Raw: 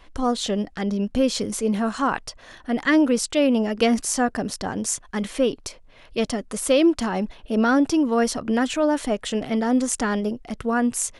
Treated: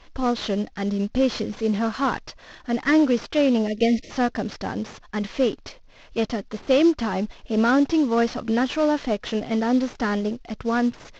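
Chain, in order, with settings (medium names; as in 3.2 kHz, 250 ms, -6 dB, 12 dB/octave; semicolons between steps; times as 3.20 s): CVSD coder 32 kbps; time-frequency box 3.68–4.10 s, 690–1800 Hz -26 dB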